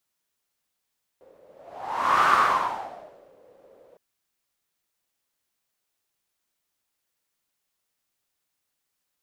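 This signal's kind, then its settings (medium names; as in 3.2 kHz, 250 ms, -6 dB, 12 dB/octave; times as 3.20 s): whoosh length 2.76 s, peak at 1.07 s, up 0.90 s, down 1.13 s, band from 520 Hz, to 1.2 kHz, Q 6.7, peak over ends 36.5 dB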